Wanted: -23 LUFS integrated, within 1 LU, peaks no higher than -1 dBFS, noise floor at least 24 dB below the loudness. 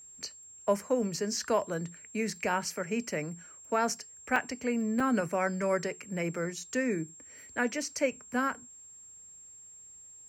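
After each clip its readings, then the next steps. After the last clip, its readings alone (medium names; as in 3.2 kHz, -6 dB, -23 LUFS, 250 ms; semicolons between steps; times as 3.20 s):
dropouts 2; longest dropout 3.3 ms; steady tone 7.5 kHz; tone level -49 dBFS; loudness -32.0 LUFS; peak level -14.0 dBFS; loudness target -23.0 LUFS
-> interpolate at 4.36/5.00 s, 3.3 ms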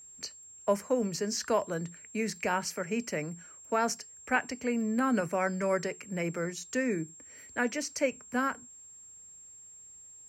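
dropouts 0; steady tone 7.5 kHz; tone level -49 dBFS
-> band-stop 7.5 kHz, Q 30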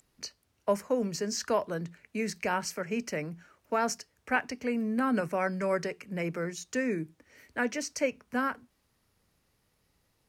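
steady tone not found; loudness -32.0 LUFS; peak level -14.0 dBFS; loudness target -23.0 LUFS
-> trim +9 dB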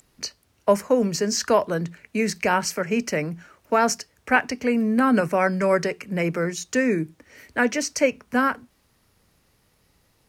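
loudness -23.0 LUFS; peak level -5.0 dBFS; noise floor -65 dBFS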